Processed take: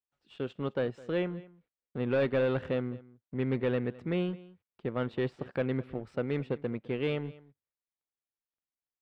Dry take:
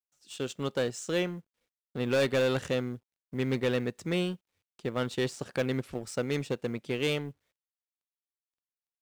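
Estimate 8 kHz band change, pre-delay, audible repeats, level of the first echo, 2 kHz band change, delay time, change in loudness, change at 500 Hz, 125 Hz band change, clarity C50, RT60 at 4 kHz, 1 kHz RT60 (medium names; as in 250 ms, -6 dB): under -25 dB, no reverb, 1, -20.5 dB, -4.5 dB, 210 ms, -1.5 dB, -1.0 dB, 0.0 dB, no reverb, no reverb, no reverb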